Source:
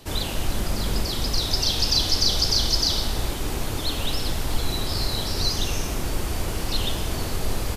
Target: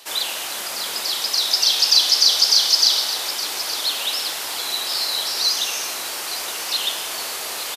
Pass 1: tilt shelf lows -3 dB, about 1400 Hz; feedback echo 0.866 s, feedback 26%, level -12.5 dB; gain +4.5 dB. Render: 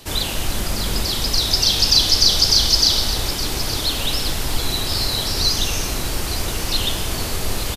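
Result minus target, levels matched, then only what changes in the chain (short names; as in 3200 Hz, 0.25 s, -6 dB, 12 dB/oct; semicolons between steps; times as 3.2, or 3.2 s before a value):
500 Hz band +6.0 dB
add first: HPF 690 Hz 12 dB/oct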